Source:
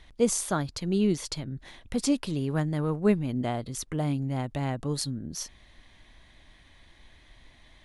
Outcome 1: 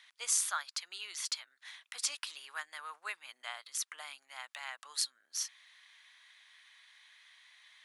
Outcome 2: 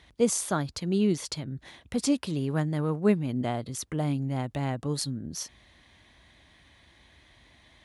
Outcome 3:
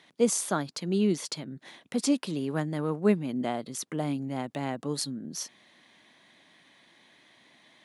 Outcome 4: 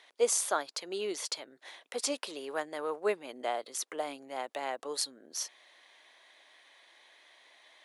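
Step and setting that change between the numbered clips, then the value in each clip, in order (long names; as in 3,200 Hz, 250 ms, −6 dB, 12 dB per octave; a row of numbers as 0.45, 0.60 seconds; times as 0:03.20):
high-pass filter, corner frequency: 1,200, 55, 170, 450 Hertz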